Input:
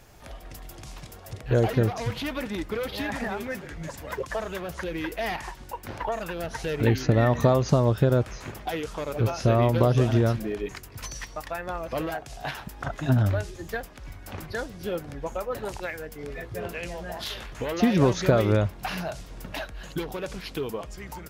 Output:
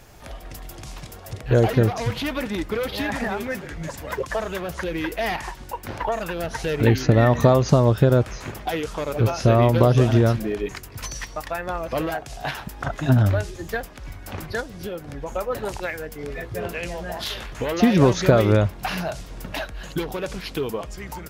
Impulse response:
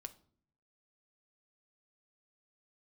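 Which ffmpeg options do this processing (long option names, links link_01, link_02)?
-filter_complex "[0:a]asplit=3[link_01][link_02][link_03];[link_01]afade=type=out:start_time=14.6:duration=0.02[link_04];[link_02]acompressor=threshold=-33dB:ratio=5,afade=type=in:start_time=14.6:duration=0.02,afade=type=out:start_time=15.27:duration=0.02[link_05];[link_03]afade=type=in:start_time=15.27:duration=0.02[link_06];[link_04][link_05][link_06]amix=inputs=3:normalize=0,volume=4.5dB"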